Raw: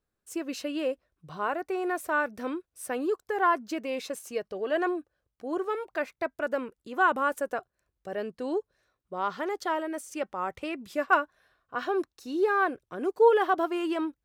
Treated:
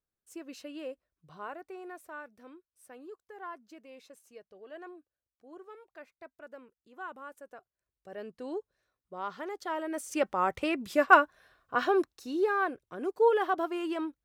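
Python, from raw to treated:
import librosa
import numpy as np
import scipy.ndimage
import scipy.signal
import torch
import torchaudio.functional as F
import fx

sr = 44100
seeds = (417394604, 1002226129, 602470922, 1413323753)

y = fx.gain(x, sr, db=fx.line((1.38, -10.5), (2.38, -18.5), (7.48, -18.5), (8.31, -7.0), (9.64, -7.0), (10.17, 4.0), (11.77, 4.0), (12.59, -4.0)))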